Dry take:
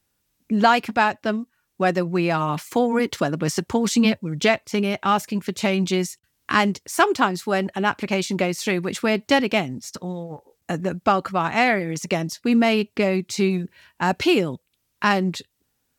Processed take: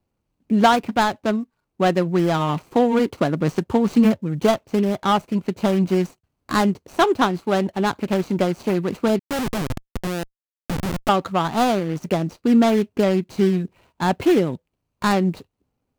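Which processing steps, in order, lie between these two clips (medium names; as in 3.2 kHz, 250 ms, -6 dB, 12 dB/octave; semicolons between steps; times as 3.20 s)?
median filter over 25 samples; 9.19–11.09 s: Schmitt trigger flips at -28.5 dBFS; trim +3 dB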